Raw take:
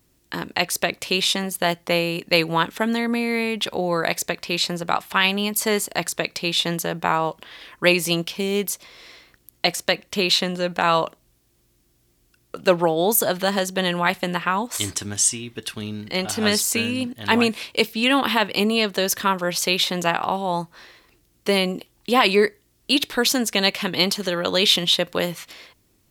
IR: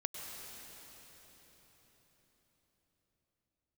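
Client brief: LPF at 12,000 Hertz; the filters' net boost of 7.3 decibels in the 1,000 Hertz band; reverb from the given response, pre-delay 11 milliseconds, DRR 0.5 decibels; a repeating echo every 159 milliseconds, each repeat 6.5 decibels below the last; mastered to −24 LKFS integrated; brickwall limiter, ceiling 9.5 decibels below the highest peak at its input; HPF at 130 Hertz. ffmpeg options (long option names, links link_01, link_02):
-filter_complex "[0:a]highpass=130,lowpass=12000,equalizer=frequency=1000:width_type=o:gain=9,alimiter=limit=-7.5dB:level=0:latency=1,aecho=1:1:159|318|477|636|795|954:0.473|0.222|0.105|0.0491|0.0231|0.0109,asplit=2[link_01][link_02];[1:a]atrim=start_sample=2205,adelay=11[link_03];[link_02][link_03]afir=irnorm=-1:irlink=0,volume=-1.5dB[link_04];[link_01][link_04]amix=inputs=2:normalize=0,volume=-6dB"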